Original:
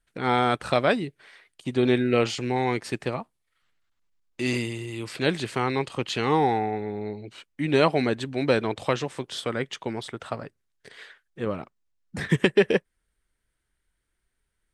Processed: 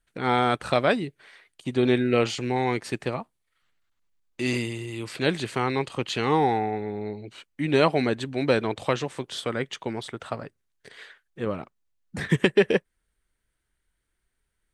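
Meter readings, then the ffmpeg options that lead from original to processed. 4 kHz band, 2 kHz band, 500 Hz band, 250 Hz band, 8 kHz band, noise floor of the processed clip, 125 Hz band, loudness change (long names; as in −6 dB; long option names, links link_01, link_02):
0.0 dB, 0.0 dB, 0.0 dB, 0.0 dB, 0.0 dB, −77 dBFS, 0.0 dB, 0.0 dB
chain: -af "bandreject=frequency=5200:width=24"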